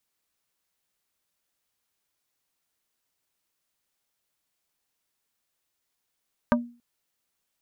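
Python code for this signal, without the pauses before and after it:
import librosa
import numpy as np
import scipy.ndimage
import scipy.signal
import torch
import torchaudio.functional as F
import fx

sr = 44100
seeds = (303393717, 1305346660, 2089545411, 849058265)

y = fx.strike_wood(sr, length_s=0.28, level_db=-16.5, body='plate', hz=239.0, decay_s=0.37, tilt_db=1, modes=5)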